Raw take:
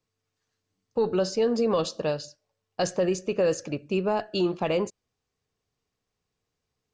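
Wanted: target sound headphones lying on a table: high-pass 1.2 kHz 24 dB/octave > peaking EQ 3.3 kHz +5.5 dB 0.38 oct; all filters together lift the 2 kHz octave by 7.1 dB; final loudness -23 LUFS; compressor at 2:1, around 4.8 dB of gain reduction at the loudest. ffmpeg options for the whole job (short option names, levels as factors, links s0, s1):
-af "equalizer=f=2000:t=o:g=9,acompressor=threshold=0.0398:ratio=2,highpass=f=1200:w=0.5412,highpass=f=1200:w=1.3066,equalizer=f=3300:t=o:w=0.38:g=5.5,volume=5.01"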